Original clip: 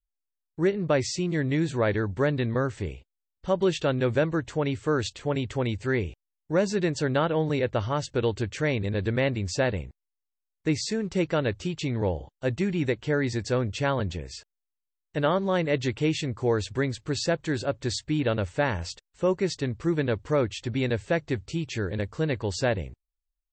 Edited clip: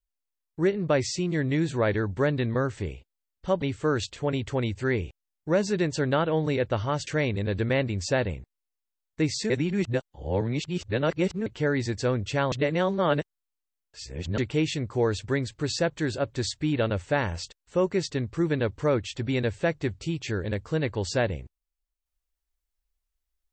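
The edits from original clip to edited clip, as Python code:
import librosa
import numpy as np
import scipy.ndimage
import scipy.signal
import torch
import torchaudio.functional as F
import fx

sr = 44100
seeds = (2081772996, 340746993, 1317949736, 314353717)

y = fx.edit(x, sr, fx.cut(start_s=3.62, length_s=1.03),
    fx.cut(start_s=8.1, length_s=0.44),
    fx.reverse_span(start_s=10.97, length_s=1.96),
    fx.reverse_span(start_s=13.99, length_s=1.86), tone=tone)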